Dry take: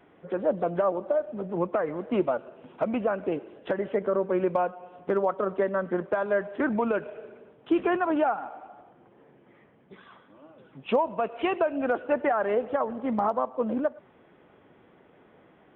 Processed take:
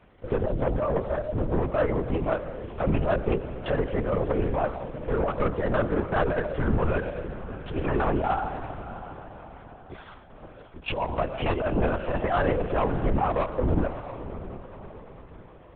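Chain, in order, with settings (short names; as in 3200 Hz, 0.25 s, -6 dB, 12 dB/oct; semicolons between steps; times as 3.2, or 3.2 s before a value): octaver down 2 oct, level -3 dB; negative-ratio compressor -26 dBFS, ratio -0.5; sample leveller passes 2; on a send: diffused feedback echo 0.656 s, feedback 45%, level -12.5 dB; on the sum: LPC vocoder at 8 kHz whisper; ending taper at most 160 dB/s; gain -2.5 dB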